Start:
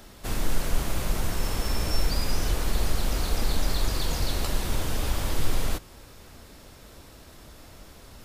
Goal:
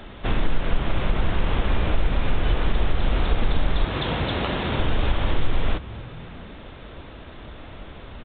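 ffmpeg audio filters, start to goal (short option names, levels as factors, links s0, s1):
-filter_complex "[0:a]asettb=1/sr,asplit=3[s0][s1][s2];[s0]atrim=end=3.844[s3];[s1]atrim=start=3.84:end=4.8,asetpts=PTS-STARTPTS,afade=t=in:d=0.004:c=qsin,afade=t=out:st=0.956:d=0.004:c=qsin,highpass=93[s4];[s2]atrim=start=4.796[s5];[s3][s4]acrossfade=d=0.004:c1=hsin:c2=qsin[s6];[s6][s5]acrossfade=d=0.004:c1=qsin:c2=hsin,acompressor=threshold=0.0562:ratio=2.5,asplit=5[s7][s8][s9][s10][s11];[s8]adelay=240,afreqshift=51,volume=0.1[s12];[s9]adelay=480,afreqshift=102,volume=0.0537[s13];[s10]adelay=720,afreqshift=153,volume=0.0292[s14];[s11]adelay=960,afreqshift=204,volume=0.0157[s15];[s7][s12][s13][s14][s15]amix=inputs=5:normalize=0,volume=2.66" -ar 8000 -c:a pcm_mulaw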